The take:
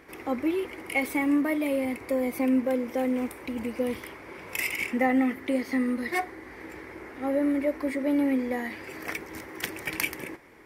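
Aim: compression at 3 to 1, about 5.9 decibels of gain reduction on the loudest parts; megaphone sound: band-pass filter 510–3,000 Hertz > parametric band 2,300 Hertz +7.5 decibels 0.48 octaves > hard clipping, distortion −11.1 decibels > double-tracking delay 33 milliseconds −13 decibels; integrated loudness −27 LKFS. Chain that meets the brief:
downward compressor 3 to 1, threshold −28 dBFS
band-pass filter 510–3,000 Hz
parametric band 2,300 Hz +7.5 dB 0.48 octaves
hard clipping −27 dBFS
double-tracking delay 33 ms −13 dB
level +8 dB

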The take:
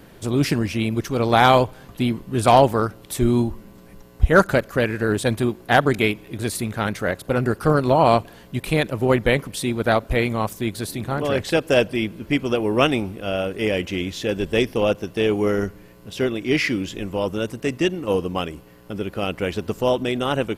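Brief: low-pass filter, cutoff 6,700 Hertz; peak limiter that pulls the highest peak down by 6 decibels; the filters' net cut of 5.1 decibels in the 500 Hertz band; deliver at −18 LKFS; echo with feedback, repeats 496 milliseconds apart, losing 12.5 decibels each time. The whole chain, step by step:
low-pass filter 6,700 Hz
parametric band 500 Hz −6.5 dB
brickwall limiter −10 dBFS
repeating echo 496 ms, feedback 24%, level −12.5 dB
level +6.5 dB

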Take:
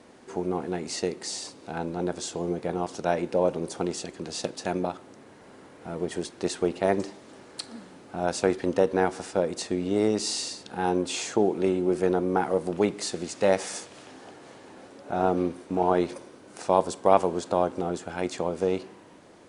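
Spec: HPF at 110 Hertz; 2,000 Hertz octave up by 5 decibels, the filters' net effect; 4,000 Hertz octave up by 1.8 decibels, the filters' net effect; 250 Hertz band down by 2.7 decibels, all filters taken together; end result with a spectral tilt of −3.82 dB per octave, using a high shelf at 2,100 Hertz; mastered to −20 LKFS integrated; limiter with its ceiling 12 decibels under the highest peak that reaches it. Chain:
high-pass filter 110 Hz
parametric band 250 Hz −4 dB
parametric band 2,000 Hz +7.5 dB
high-shelf EQ 2,100 Hz −3 dB
parametric band 4,000 Hz +3.5 dB
level +10.5 dB
brickwall limiter −5.5 dBFS

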